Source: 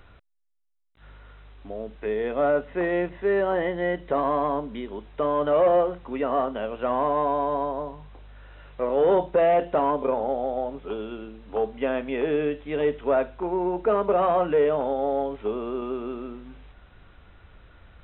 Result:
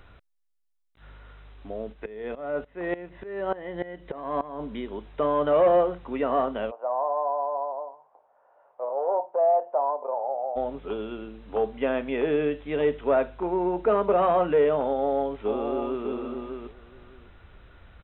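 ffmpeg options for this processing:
-filter_complex "[0:a]asplit=3[a][b][c];[a]afade=t=out:st=1.92:d=0.02[d];[b]aeval=exprs='val(0)*pow(10,-19*if(lt(mod(-3.4*n/s,1),2*abs(-3.4)/1000),1-mod(-3.4*n/s,1)/(2*abs(-3.4)/1000),(mod(-3.4*n/s,1)-2*abs(-3.4)/1000)/(1-2*abs(-3.4)/1000))/20)':c=same,afade=t=in:st=1.92:d=0.02,afade=t=out:st=4.59:d=0.02[e];[c]afade=t=in:st=4.59:d=0.02[f];[d][e][f]amix=inputs=3:normalize=0,asplit=3[g][h][i];[g]afade=t=out:st=6.7:d=0.02[j];[h]asuperpass=centerf=750:order=4:qfactor=1.8,afade=t=in:st=6.7:d=0.02,afade=t=out:st=10.55:d=0.02[k];[i]afade=t=in:st=10.55:d=0.02[l];[j][k][l]amix=inputs=3:normalize=0,asplit=2[m][n];[n]afade=t=in:st=14.87:d=0.01,afade=t=out:st=16.07:d=0.01,aecho=0:1:600|1200|1800:0.473151|0.0709727|0.0106459[o];[m][o]amix=inputs=2:normalize=0"

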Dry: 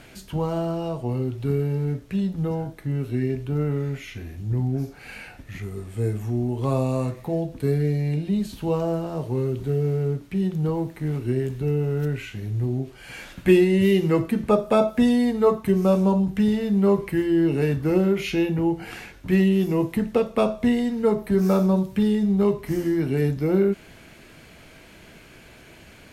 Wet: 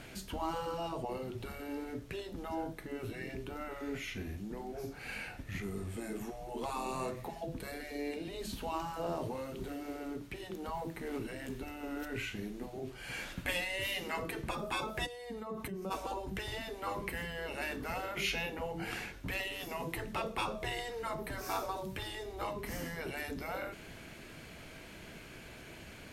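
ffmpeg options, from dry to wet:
-filter_complex "[0:a]asplit=3[a][b][c];[a]afade=t=out:st=15.05:d=0.02[d];[b]acompressor=threshold=-30dB:ratio=20:attack=3.2:release=140:knee=1:detection=peak,afade=t=in:st=15.05:d=0.02,afade=t=out:st=15.9:d=0.02[e];[c]afade=t=in:st=15.9:d=0.02[f];[d][e][f]amix=inputs=3:normalize=0,afftfilt=real='re*lt(hypot(re,im),0.2)':imag='im*lt(hypot(re,im),0.2)':win_size=1024:overlap=0.75,volume=-2.5dB"

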